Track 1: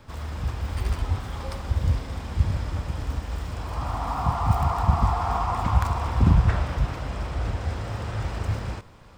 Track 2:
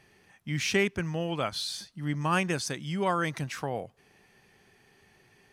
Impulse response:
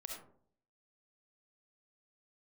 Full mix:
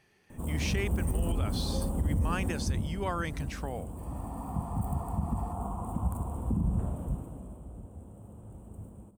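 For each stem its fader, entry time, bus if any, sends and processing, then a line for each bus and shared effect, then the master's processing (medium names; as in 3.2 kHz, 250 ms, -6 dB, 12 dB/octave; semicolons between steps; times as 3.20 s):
2.46 s -2.5 dB -> 2.88 s -11.5 dB -> 7.07 s -11.5 dB -> 7.74 s -21.5 dB, 0.30 s, send -3.5 dB, FFT filter 120 Hz 0 dB, 200 Hz +10 dB, 1 kHz -6 dB, 2 kHz -25 dB, 3 kHz -15 dB, 5 kHz -29 dB, 8.6 kHz +14 dB; treble shelf 7.4 kHz -7 dB
-5.5 dB, 0.00 s, no send, none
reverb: on, RT60 0.55 s, pre-delay 25 ms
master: peak limiter -20.5 dBFS, peak gain reduction 9 dB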